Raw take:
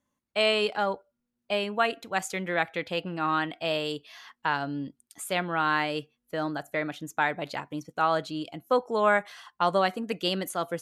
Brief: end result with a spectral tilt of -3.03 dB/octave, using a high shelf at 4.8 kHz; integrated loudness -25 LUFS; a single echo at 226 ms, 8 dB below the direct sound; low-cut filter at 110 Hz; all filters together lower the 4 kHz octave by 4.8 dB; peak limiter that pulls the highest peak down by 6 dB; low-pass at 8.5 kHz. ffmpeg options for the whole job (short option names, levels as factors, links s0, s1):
-af "highpass=110,lowpass=8500,equalizer=f=4000:t=o:g=-4,highshelf=f=4800:g=-6.5,alimiter=limit=0.141:level=0:latency=1,aecho=1:1:226:0.398,volume=2"